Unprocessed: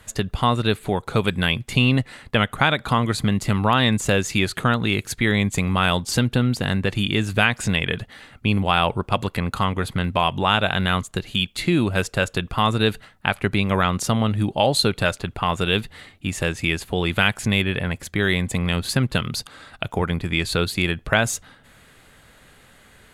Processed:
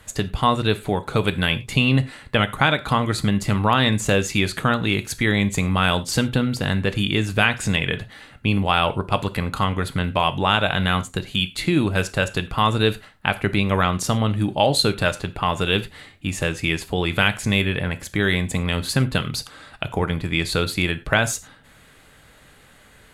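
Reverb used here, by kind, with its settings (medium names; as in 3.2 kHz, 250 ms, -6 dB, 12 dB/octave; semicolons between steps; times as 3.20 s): gated-style reverb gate 130 ms falling, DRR 10.5 dB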